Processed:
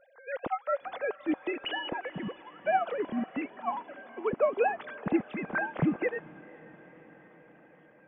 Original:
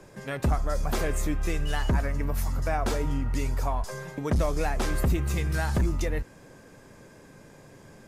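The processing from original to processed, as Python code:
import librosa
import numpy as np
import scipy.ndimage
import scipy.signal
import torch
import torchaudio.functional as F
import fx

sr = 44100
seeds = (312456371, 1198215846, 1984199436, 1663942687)

y = fx.sine_speech(x, sr)
y = fx.echo_diffused(y, sr, ms=473, feedback_pct=68, wet_db=-15.0)
y = fx.upward_expand(y, sr, threshold_db=-35.0, expansion=1.5)
y = y * 10.0 ** (-4.0 / 20.0)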